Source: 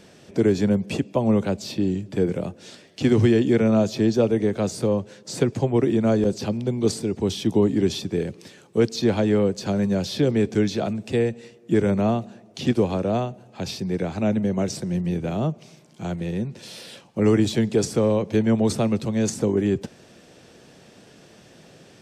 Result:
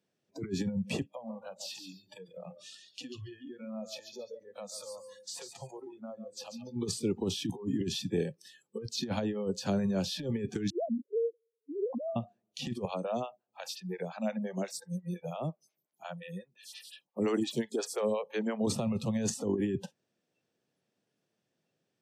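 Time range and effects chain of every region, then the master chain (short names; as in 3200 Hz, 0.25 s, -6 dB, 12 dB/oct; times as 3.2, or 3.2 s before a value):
1.08–6.76 compressor 8:1, threshold -31 dBFS + feedback echo 0.141 s, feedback 36%, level -7 dB
10.7–12.16 sine-wave speech + rippled Chebyshev low-pass 1100 Hz, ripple 6 dB
12.85–18.67 tilt shelf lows -4 dB, about 1100 Hz + photocell phaser 5.7 Hz
whole clip: HPF 100 Hz 24 dB/oct; negative-ratio compressor -22 dBFS, ratio -0.5; spectral noise reduction 27 dB; gain -7 dB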